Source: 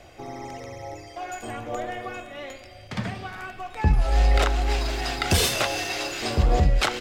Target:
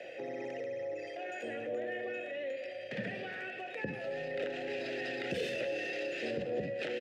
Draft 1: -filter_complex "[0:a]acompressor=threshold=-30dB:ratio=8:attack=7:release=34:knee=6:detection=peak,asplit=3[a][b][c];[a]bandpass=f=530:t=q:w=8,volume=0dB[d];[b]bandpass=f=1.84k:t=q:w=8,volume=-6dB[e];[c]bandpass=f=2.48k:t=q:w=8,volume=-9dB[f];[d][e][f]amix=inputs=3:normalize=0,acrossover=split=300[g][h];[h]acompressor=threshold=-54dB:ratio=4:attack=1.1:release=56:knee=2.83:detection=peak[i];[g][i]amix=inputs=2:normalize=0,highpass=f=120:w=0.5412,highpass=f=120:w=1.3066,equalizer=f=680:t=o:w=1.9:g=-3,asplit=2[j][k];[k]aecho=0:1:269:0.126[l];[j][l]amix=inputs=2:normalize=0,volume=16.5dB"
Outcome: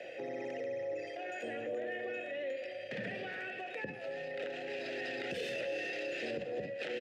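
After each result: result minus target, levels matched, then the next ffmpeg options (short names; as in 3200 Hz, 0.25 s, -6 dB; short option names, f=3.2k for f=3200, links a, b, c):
echo 75 ms late; compressor: peak gain reduction +7.5 dB
-filter_complex "[0:a]acompressor=threshold=-30dB:ratio=8:attack=7:release=34:knee=6:detection=peak,asplit=3[a][b][c];[a]bandpass=f=530:t=q:w=8,volume=0dB[d];[b]bandpass=f=1.84k:t=q:w=8,volume=-6dB[e];[c]bandpass=f=2.48k:t=q:w=8,volume=-9dB[f];[d][e][f]amix=inputs=3:normalize=0,acrossover=split=300[g][h];[h]acompressor=threshold=-54dB:ratio=4:attack=1.1:release=56:knee=2.83:detection=peak[i];[g][i]amix=inputs=2:normalize=0,highpass=f=120:w=0.5412,highpass=f=120:w=1.3066,equalizer=f=680:t=o:w=1.9:g=-3,asplit=2[j][k];[k]aecho=0:1:194:0.126[l];[j][l]amix=inputs=2:normalize=0,volume=16.5dB"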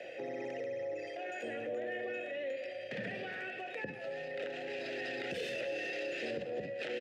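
compressor: peak gain reduction +7.5 dB
-filter_complex "[0:a]acompressor=threshold=-21.5dB:ratio=8:attack=7:release=34:knee=6:detection=peak,asplit=3[a][b][c];[a]bandpass=f=530:t=q:w=8,volume=0dB[d];[b]bandpass=f=1.84k:t=q:w=8,volume=-6dB[e];[c]bandpass=f=2.48k:t=q:w=8,volume=-9dB[f];[d][e][f]amix=inputs=3:normalize=0,acrossover=split=300[g][h];[h]acompressor=threshold=-54dB:ratio=4:attack=1.1:release=56:knee=2.83:detection=peak[i];[g][i]amix=inputs=2:normalize=0,highpass=f=120:w=0.5412,highpass=f=120:w=1.3066,equalizer=f=680:t=o:w=1.9:g=-3,asplit=2[j][k];[k]aecho=0:1:194:0.126[l];[j][l]amix=inputs=2:normalize=0,volume=16.5dB"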